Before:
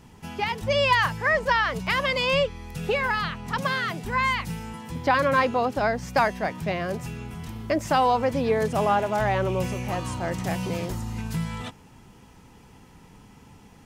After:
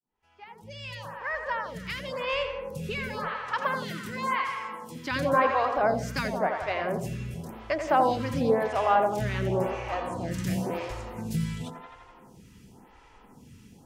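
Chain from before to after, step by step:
fade in at the beginning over 3.99 s
0:03.27–0:05.10: high-pass filter 120 Hz → 290 Hz 12 dB per octave
0:09.45–0:10.29: high-shelf EQ 10,000 Hz → 6,200 Hz −8.5 dB
tape delay 85 ms, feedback 79%, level −6.5 dB, low-pass 3,100 Hz
phaser with staggered stages 0.94 Hz

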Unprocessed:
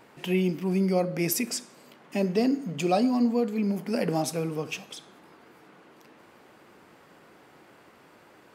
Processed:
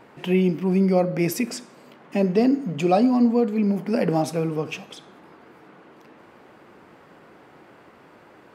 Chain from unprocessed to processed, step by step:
high-shelf EQ 3,700 Hz −11 dB
level +5.5 dB

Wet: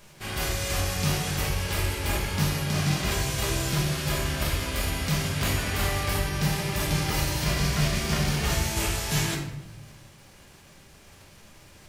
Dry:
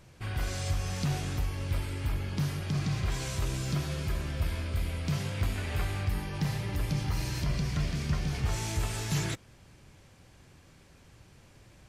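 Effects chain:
spectral envelope flattened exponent 0.6
rectangular room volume 290 cubic metres, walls mixed, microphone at 1.3 metres

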